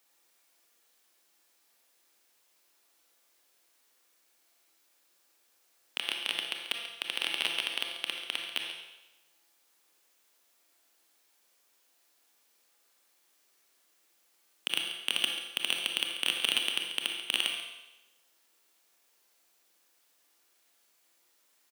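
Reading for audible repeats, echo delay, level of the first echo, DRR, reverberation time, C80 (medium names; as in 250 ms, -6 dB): 1, 138 ms, -12.0 dB, 1.5 dB, 1.0 s, 5.0 dB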